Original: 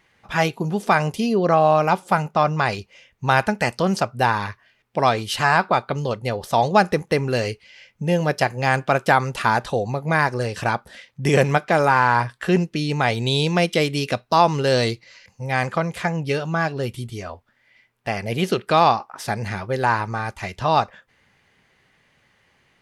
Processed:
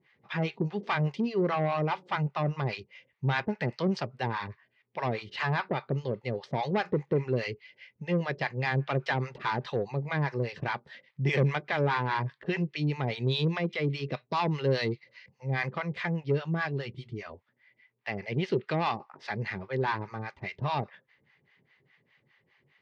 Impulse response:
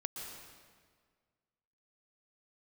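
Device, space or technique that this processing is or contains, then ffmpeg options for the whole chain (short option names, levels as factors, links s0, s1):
guitar amplifier with harmonic tremolo: -filter_complex "[0:a]asettb=1/sr,asplit=3[s0][s1][s2];[s0]atrim=end=13.444[s3];[s1]atrim=start=13.44:end=14.14,asetpts=PTS-STARTPTS,afade=t=in:d=0.004:c=qsin,afade=t=out:st=0.696:d=0.004:c=qsin,deesser=0.7[s4];[s2]atrim=start=14.136[s5];[s3][s4]acrossfade=d=0.004:c1=hsin:c2=qsin[s6];[s6][s5]acrossfade=d=0.004:c1=qsin:c2=hsin,acrossover=split=670[s7][s8];[s7]aeval=exprs='val(0)*(1-1/2+1/2*cos(2*PI*4.9*n/s))':c=same[s9];[s8]aeval=exprs='val(0)*(1-1/2-1/2*cos(2*PI*4.9*n/s))':c=same[s10];[s9][s10]amix=inputs=2:normalize=0,asoftclip=type=tanh:threshold=0.141,highpass=110,equalizer=f=140:t=q:w=4:g=8,equalizer=f=390:t=q:w=4:g=5,equalizer=f=710:t=q:w=4:g=-4,equalizer=f=1400:t=q:w=4:g=-4,equalizer=f=2000:t=q:w=4:g=6,lowpass=f=4500:w=0.5412,lowpass=f=4500:w=1.3066,volume=0.631"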